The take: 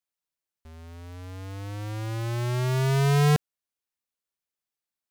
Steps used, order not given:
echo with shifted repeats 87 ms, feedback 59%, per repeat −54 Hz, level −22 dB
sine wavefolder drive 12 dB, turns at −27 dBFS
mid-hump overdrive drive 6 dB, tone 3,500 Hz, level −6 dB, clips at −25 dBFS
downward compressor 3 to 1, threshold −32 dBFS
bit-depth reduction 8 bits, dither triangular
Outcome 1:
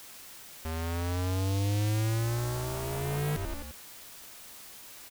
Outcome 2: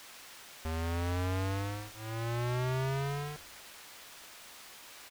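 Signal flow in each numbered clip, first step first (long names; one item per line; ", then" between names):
mid-hump overdrive, then echo with shifted repeats, then downward compressor, then sine wavefolder, then bit-depth reduction
downward compressor, then sine wavefolder, then echo with shifted repeats, then bit-depth reduction, then mid-hump overdrive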